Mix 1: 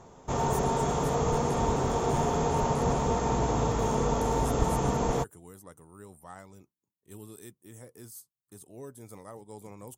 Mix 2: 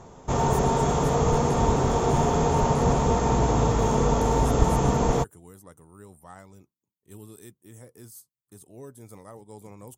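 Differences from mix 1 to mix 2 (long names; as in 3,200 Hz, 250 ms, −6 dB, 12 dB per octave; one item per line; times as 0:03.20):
background +4.0 dB
master: add low-shelf EQ 170 Hz +3.5 dB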